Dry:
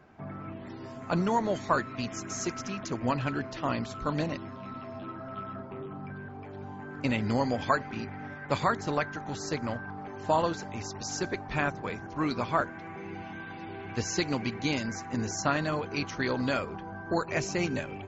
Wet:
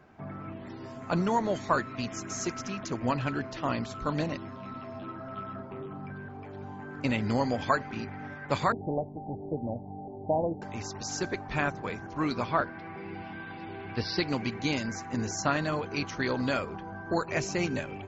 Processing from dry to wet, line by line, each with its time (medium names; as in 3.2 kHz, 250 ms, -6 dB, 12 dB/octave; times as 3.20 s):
8.72–10.62 s: steep low-pass 830 Hz 72 dB/octave
12.48–14.29 s: careless resampling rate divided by 4×, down none, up filtered